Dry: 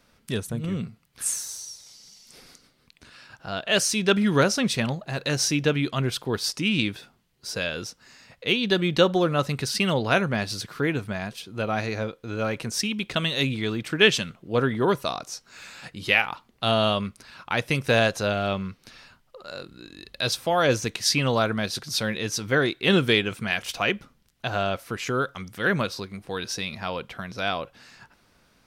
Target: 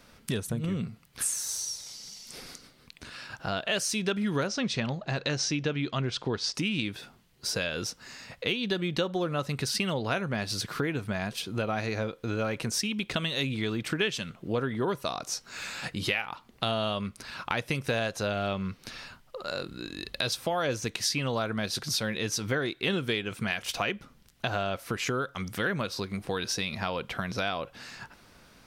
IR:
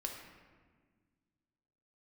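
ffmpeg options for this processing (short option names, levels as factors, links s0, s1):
-filter_complex "[0:a]asettb=1/sr,asplit=3[s0][s1][s2];[s0]atrim=end=4.474[s3];[s1]atrim=start=4.47:end=6.55,asetpts=PTS-STARTPTS,afade=t=in:d=0.004:c=qsin,afade=t=out:st=2.076:d=0.004:c=qsin,lowpass=f=6600:w=0.5412,lowpass=f=6600:w=1.3066[s4];[s2]atrim=start=6.546[s5];[s3][s4]acrossfade=d=0.004:c1=hsin:c2=qsin[s6];[s6][s5]acrossfade=d=0.004:c1=qsin:c2=hsin,acompressor=threshold=0.02:ratio=4,volume=1.88"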